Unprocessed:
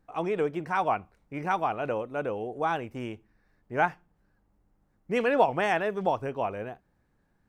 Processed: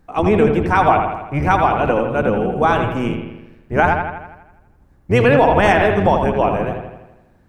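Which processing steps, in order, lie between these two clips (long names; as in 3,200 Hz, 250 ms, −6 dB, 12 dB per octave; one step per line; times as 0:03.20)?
sub-octave generator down 1 octave, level +2 dB
bucket-brigade delay 82 ms, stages 2,048, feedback 57%, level −6 dB
boost into a limiter +14 dB
level −2 dB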